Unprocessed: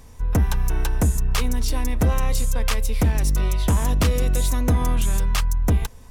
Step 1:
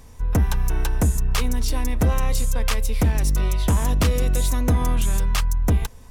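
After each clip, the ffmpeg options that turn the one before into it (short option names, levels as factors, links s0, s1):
-af anull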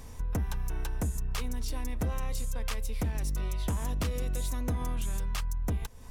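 -af "acompressor=threshold=0.0178:ratio=2.5"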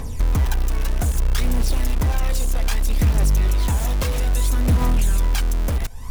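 -filter_complex "[0:a]aphaser=in_gain=1:out_gain=1:delay=1.9:decay=0.6:speed=0.62:type=triangular,asplit=2[s0][s1];[s1]aeval=exprs='(mod(25.1*val(0)+1,2)-1)/25.1':c=same,volume=0.447[s2];[s0][s2]amix=inputs=2:normalize=0,volume=2.11"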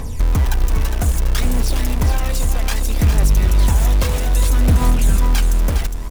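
-af "aecho=1:1:409:0.422,volume=1.41"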